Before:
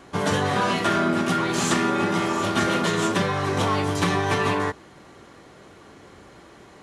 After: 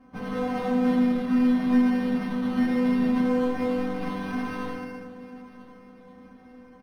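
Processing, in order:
thirty-one-band graphic EQ 200 Hz +11 dB, 400 Hz −3 dB, 4,000 Hz −10 dB, 6,300 Hz +8 dB
spring reverb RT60 1.8 s, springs 36/58 ms, chirp 55 ms, DRR −0.5 dB
in parallel at −5 dB: wrap-around overflow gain 17 dB
on the sum: spectral tilt −2 dB per octave
stiff-string resonator 250 Hz, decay 0.34 s, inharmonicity 0.002
on a send: repeating echo 991 ms, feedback 46%, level −20 dB
on the sum: linearly interpolated sample-rate reduction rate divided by 6×
level +2 dB

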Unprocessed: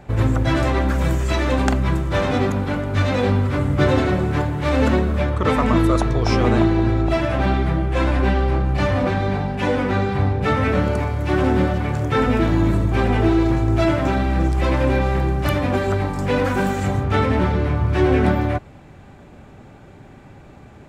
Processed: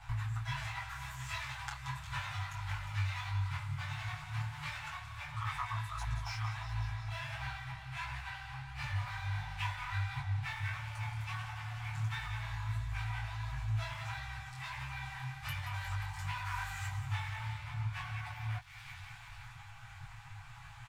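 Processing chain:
delay with a high-pass on its return 178 ms, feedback 72%, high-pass 2,500 Hz, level −10.5 dB
downward compressor 4 to 1, threshold −32 dBFS, peak gain reduction 17.5 dB
dead-zone distortion −53 dBFS
inverse Chebyshev band-stop filter 180–550 Hz, stop band 40 dB
comb filter 7.2 ms, depth 94%
micro pitch shift up and down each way 51 cents
level +1 dB

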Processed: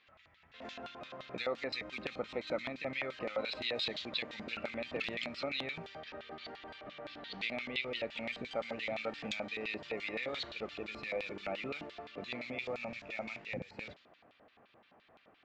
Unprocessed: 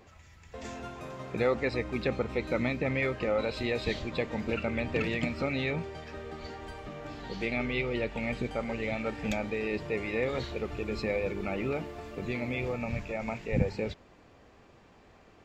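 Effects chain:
low-pass that shuts in the quiet parts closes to 2,300 Hz, open at −26.5 dBFS
flat-topped bell 600 Hz −8.5 dB
downward compressor, threshold −31 dBFS, peak gain reduction 11 dB
auto-filter band-pass square 5.8 Hz 660–3,700 Hz
level +9 dB

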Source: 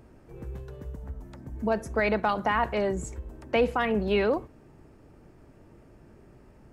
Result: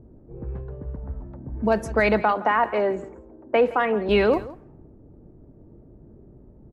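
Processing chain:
0:02.22–0:04.09: three-way crossover with the lows and the highs turned down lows −20 dB, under 230 Hz, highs −13 dB, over 2,400 Hz
low-pass that shuts in the quiet parts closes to 380 Hz, open at −24.5 dBFS
single-tap delay 167 ms −18 dB
level +5.5 dB

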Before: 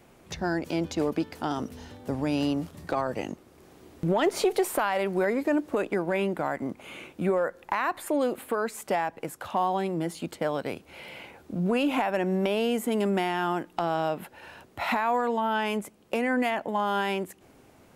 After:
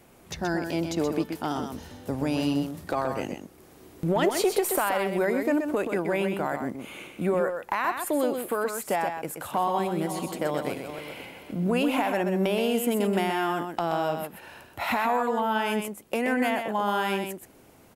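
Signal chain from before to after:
0:09.14–0:11.54: feedback delay that plays each chunk backwards 264 ms, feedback 46%, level −9.5 dB
parametric band 13,000 Hz +7.5 dB 0.99 octaves
single-tap delay 127 ms −6.5 dB

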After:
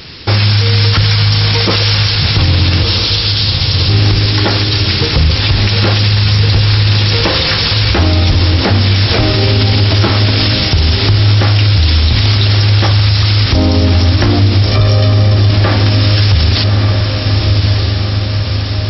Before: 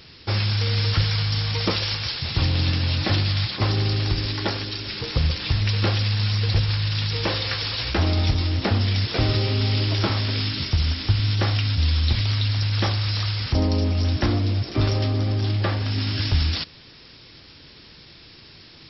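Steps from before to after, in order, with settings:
0:02.83–0:03.89: inverse Chebyshev band-stop filter 130–1,600 Hz, stop band 40 dB
0:14.66–0:15.51: comb filter 1.7 ms, depth 79%
feedback delay with all-pass diffusion 1,223 ms, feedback 63%, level −8 dB
boost into a limiter +16.5 dB
level −1 dB

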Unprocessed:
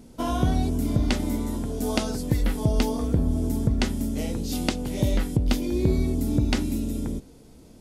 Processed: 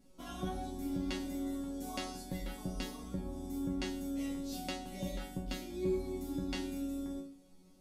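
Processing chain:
resonators tuned to a chord F#3 fifth, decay 0.42 s
hum removal 54.84 Hz, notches 36
level +5 dB

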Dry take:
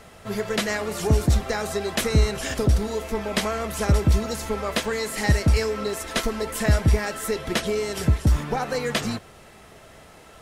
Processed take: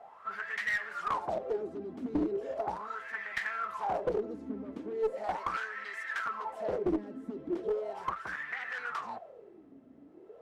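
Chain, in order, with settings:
harmonic generator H 7 −6 dB, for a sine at −8 dBFS
LFO wah 0.38 Hz 260–1,900 Hz, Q 11
asymmetric clip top −28 dBFS
level +1.5 dB

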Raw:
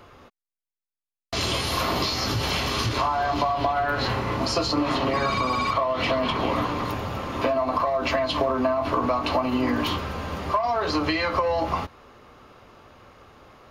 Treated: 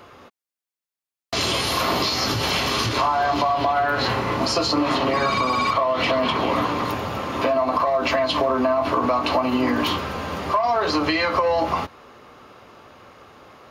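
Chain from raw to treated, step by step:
high-pass filter 150 Hz 6 dB per octave
in parallel at +0.5 dB: brickwall limiter −16.5 dBFS, peak gain reduction 6.5 dB
on the sum: level −2 dB

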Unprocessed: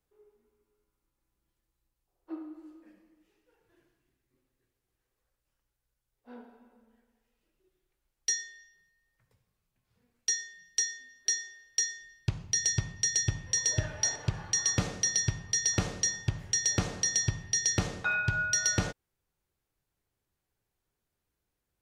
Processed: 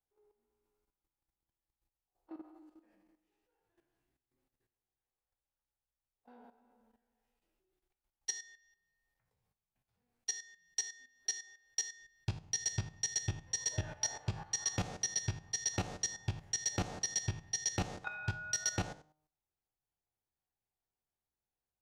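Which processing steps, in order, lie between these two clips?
peak hold with a decay on every bin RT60 0.34 s
parametric band 790 Hz +9 dB 0.49 octaves
hum removal 153 Hz, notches 9
output level in coarse steps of 13 dB
level −5.5 dB

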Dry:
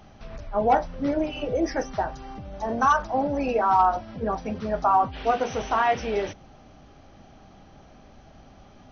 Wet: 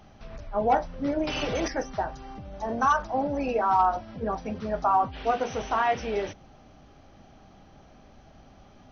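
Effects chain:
0:01.27–0:01.68: every bin compressed towards the loudest bin 2 to 1
level −2.5 dB

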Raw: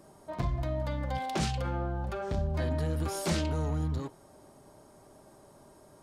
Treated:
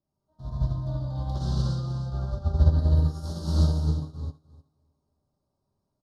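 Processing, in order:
drawn EQ curve 120 Hz 0 dB, 460 Hz −13 dB, 4,300 Hz 0 dB, 7,800 Hz −17 dB
in parallel at +2.5 dB: brickwall limiter −31.5 dBFS, peak gain reduction 10.5 dB
on the sum: Butterworth band-reject 2,300 Hz, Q 0.67
on a send: repeating echo 306 ms, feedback 38%, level −7 dB
on the sum: reverb whose tail is shaped and stops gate 340 ms flat, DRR −8 dB
expander for the loud parts 2.5 to 1, over −34 dBFS

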